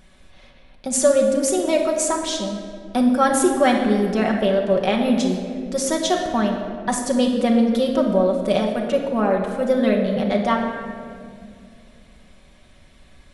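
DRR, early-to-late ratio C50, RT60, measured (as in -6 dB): -0.5 dB, 4.0 dB, 2.2 s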